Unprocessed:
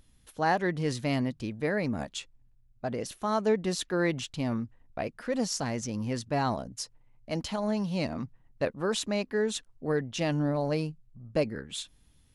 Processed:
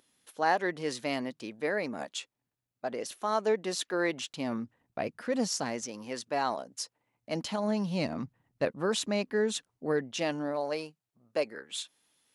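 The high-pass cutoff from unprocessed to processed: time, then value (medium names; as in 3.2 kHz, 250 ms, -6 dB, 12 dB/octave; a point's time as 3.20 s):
4.17 s 340 Hz
5.31 s 99 Hz
5.92 s 400 Hz
6.75 s 400 Hz
7.65 s 130 Hz
9.57 s 130 Hz
10.66 s 480 Hz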